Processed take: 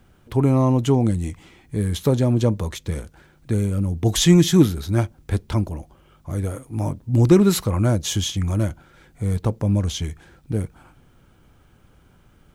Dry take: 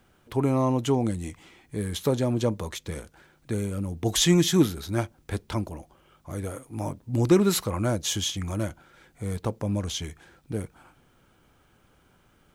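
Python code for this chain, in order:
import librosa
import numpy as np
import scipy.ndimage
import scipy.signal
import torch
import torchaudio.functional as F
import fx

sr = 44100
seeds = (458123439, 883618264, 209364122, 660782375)

y = fx.low_shelf(x, sr, hz=210.0, db=9.5)
y = y * 10.0 ** (2.0 / 20.0)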